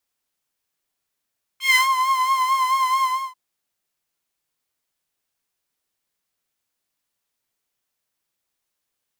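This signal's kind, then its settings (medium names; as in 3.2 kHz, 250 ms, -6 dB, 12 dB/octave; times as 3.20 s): synth patch with vibrato C6, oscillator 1 saw, sub -29 dB, noise -19 dB, filter highpass, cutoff 1 kHz, Q 4, filter envelope 1.5 oct, filter decay 0.28 s, filter sustain 10%, attack 155 ms, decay 0.13 s, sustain -12 dB, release 0.32 s, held 1.42 s, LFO 4.5 Hz, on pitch 44 cents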